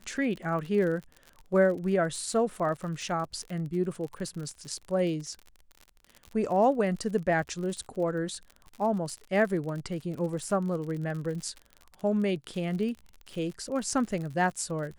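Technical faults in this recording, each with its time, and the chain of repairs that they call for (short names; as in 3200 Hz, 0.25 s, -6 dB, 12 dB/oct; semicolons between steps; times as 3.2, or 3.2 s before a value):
crackle 50/s -36 dBFS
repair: de-click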